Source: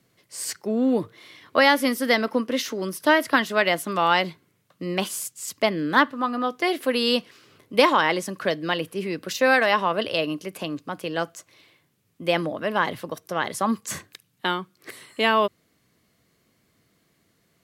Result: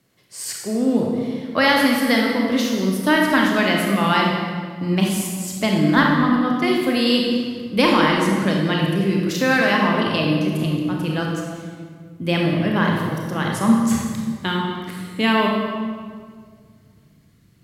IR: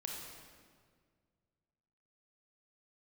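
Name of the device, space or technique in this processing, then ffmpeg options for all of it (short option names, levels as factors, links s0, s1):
stairwell: -filter_complex "[0:a]asubboost=boost=5.5:cutoff=220[s0];[1:a]atrim=start_sample=2205[s1];[s0][s1]afir=irnorm=-1:irlink=0,volume=1.58"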